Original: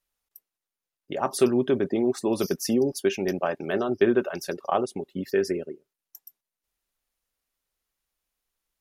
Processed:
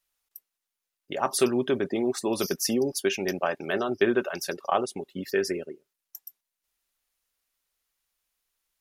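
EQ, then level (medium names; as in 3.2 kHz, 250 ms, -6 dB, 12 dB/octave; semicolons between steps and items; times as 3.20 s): tilt shelf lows -4 dB, about 810 Hz; 0.0 dB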